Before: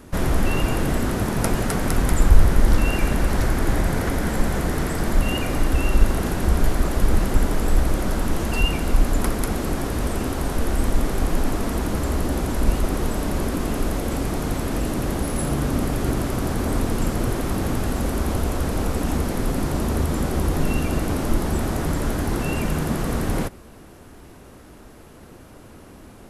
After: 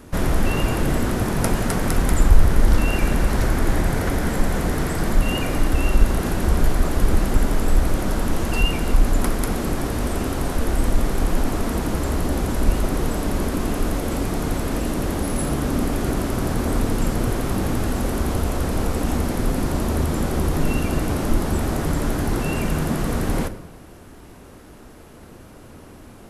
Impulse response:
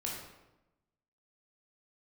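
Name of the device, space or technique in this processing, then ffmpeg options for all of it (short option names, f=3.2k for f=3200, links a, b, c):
saturated reverb return: -filter_complex "[0:a]asplit=2[a][b];[1:a]atrim=start_sample=2205[c];[b][c]afir=irnorm=-1:irlink=0,asoftclip=type=tanh:threshold=-8dB,volume=-10dB[d];[a][d]amix=inputs=2:normalize=0,volume=-1dB"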